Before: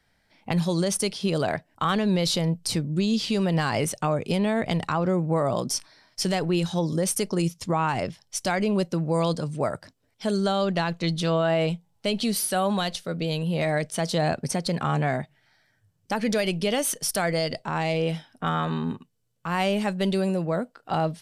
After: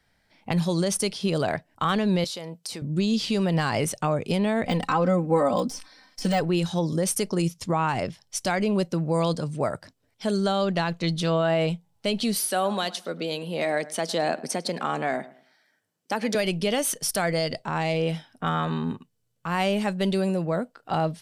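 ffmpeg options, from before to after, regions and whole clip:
-filter_complex "[0:a]asettb=1/sr,asplit=3[a][b][c];[a]atrim=end=2.244[d];[b]atrim=start=2.24:end=2.82,asetpts=PTS-STARTPTS,afade=t=in:d=0.004:c=qsin,afade=t=out:st=0.576:d=0.004:c=qsin,highpass=100,bass=f=250:g=-13,treble=f=4k:g=1,acompressor=threshold=-31dB:ratio=5:attack=3.2:release=140:knee=1:detection=peak[e];[c]atrim=start=2.816[f];[d][e]acrossfade=d=0.004:c1=hsin:c2=qsin[g];[g][f]acrossfade=d=0.004:c1=qsin:c2=hsin,asettb=1/sr,asplit=3[h][i][j];[h]atrim=end=4.644[k];[i]atrim=start=4.64:end=6.41,asetpts=PTS-STARTPTS,afade=t=in:d=0.004:c=qsin,afade=t=out:st=1.766:d=0.004:c=qsin,deesser=0.8,aecho=1:1:3.9:0.98,atrim=end_sample=78057[l];[j]atrim=start=6.406[m];[k][l]acrossfade=d=0.004:c1=hsin:c2=qsin[n];[n][m]acrossfade=d=0.004:c1=qsin:c2=hsin,asettb=1/sr,asplit=3[o][p][q];[o]atrim=end=12.394[r];[p]atrim=start=12.39:end=16.35,asetpts=PTS-STARTPTS,afade=t=in:d=0.004:c=qsin,afade=t=out:st=3.956:d=0.004:c=qsin,highpass=f=220:w=0.5412,highpass=f=220:w=1.3066,asplit=2[s][t];[t]adelay=106,lowpass=f=2.4k:p=1,volume=-17.5dB,asplit=2[u][v];[v]adelay=106,lowpass=f=2.4k:p=1,volume=0.29,asplit=2[w][x];[x]adelay=106,lowpass=f=2.4k:p=1,volume=0.29[y];[s][u][w][y]amix=inputs=4:normalize=0,atrim=end_sample=174636[z];[q]atrim=start=16.346[aa];[r][z]acrossfade=d=0.004:c1=hsin:c2=qsin[ab];[ab][aa]acrossfade=d=0.004:c1=qsin:c2=hsin"

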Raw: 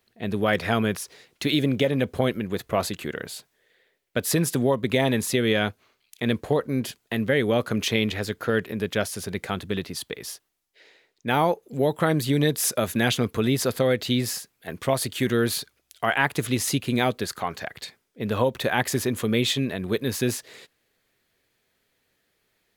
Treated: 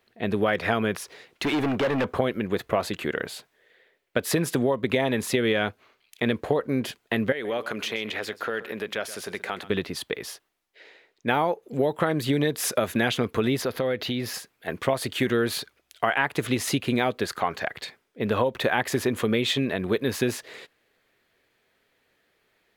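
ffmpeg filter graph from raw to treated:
-filter_complex "[0:a]asettb=1/sr,asplit=3[a][b][c];[a]atrim=end=1.444[d];[b]atrim=start=1.44:end=2.19,asetpts=PTS-STARTPTS,afade=t=in:d=0.004:c=qsin,afade=t=out:st=0.746:d=0.004:c=qsin,acrossover=split=2800[e][f];[f]acompressor=threshold=-34dB:ratio=4:attack=1:release=60[g];[e][g]amix=inputs=2:normalize=0,equalizer=f=1.1k:t=o:w=1:g=12.5,volume=24dB,asoftclip=hard,volume=-24dB[h];[c]atrim=start=2.186[i];[d][h]acrossfade=d=0.004:c1=hsin:c2=qsin[j];[j][i]acrossfade=d=0.004:c1=qsin:c2=hsin,asettb=1/sr,asplit=3[k][l][m];[k]atrim=end=7.324[n];[l]atrim=start=7.32:end=9.7,asetpts=PTS-STARTPTS,afade=t=in:d=0.004:c=qsin,afade=t=out:st=2.376:d=0.004:c=qsin,highpass=f=520:p=1,acompressor=threshold=-30dB:ratio=3:attack=3.2:release=140:knee=1:detection=peak,aecho=1:1:128:0.168,atrim=end_sample=104958[o];[m]atrim=start=9.696[p];[n][o]acrossfade=d=0.004:c1=hsin:c2=qsin[q];[q][p]acrossfade=d=0.004:c1=qsin:c2=hsin,asettb=1/sr,asplit=3[r][s][t];[r]atrim=end=13.614[u];[s]atrim=start=13.61:end=14.34,asetpts=PTS-STARTPTS,afade=t=in:d=0.004:c=qsin,afade=t=out:st=0.726:d=0.004:c=qsin,equalizer=f=8k:t=o:w=0.3:g=-12.5,acompressor=threshold=-28dB:ratio=2.5:attack=3.2:release=140:knee=1:detection=peak[v];[t]atrim=start=14.336[w];[u][v]acrossfade=d=0.004:c1=hsin:c2=qsin[x];[x][w]acrossfade=d=0.004:c1=qsin:c2=hsin,bass=f=250:g=-6,treble=f=4k:g=-9,acompressor=threshold=-24dB:ratio=6,volume=5dB"

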